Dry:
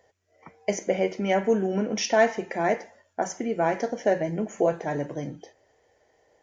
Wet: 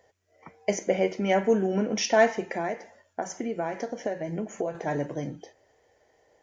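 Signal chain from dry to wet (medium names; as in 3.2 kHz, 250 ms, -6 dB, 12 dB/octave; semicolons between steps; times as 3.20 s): 2.57–4.75 s: compression 6:1, threshold -27 dBFS, peak gain reduction 10 dB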